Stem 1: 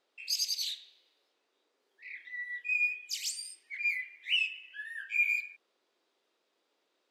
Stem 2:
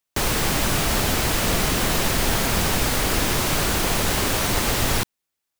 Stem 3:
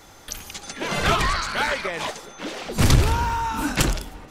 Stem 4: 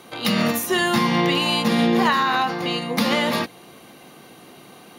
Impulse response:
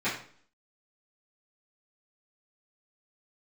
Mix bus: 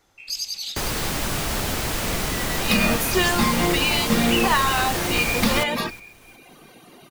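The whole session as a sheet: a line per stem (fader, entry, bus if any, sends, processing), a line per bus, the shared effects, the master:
+3.0 dB, 0.00 s, no send, echo send −8.5 dB, no processing
−4.0 dB, 0.60 s, no send, echo send −19.5 dB, no processing
−16.0 dB, 0.00 s, no send, no echo send, downward compressor, threshold −29 dBFS, peak gain reduction 17 dB
0.0 dB, 2.45 s, no send, no echo send, reverb reduction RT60 1.1 s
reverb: not used
echo: repeating echo 363 ms, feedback 34%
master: no processing

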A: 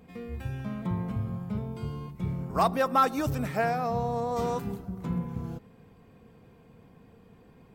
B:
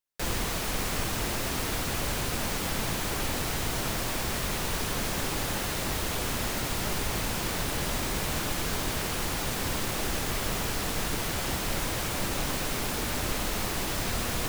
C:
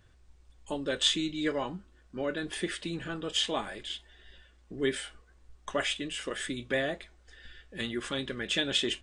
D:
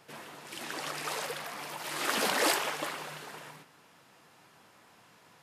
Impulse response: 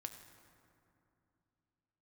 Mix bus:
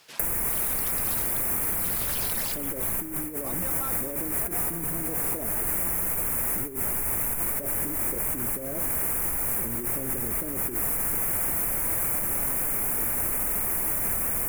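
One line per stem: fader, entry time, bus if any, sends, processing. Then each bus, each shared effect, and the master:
−9.5 dB, 0.85 s, no send, no processing
+0.5 dB, 0.00 s, no send, drawn EQ curve 2,300 Hz 0 dB, 3,900 Hz −28 dB, 11,000 Hz +9 dB
+2.0 dB, 1.85 s, send −4.5 dB, Butterworth low-pass 700 Hz 72 dB per octave; spectral tilt −3 dB per octave
−10.0 dB, 0.00 s, no send, reverb reduction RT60 1.9 s; parametric band 3,700 Hz +9.5 dB 2.5 octaves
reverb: on, RT60 2.8 s, pre-delay 4 ms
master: bass and treble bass −2 dB, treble +7 dB; compressor whose output falls as the input rises −26 dBFS, ratio −0.5

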